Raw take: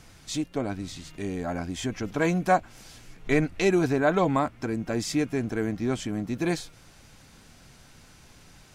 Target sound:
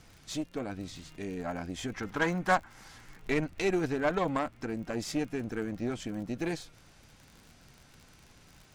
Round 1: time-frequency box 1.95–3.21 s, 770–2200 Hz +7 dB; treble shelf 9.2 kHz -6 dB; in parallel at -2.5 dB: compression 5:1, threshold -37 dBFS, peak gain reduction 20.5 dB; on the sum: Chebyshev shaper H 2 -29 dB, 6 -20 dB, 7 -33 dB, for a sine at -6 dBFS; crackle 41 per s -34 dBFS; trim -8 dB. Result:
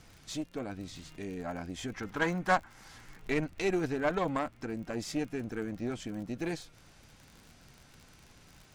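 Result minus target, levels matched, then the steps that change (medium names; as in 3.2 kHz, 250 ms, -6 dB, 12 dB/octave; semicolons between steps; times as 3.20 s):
compression: peak gain reduction +7 dB
change: compression 5:1, threshold -28 dBFS, peak gain reduction 13.5 dB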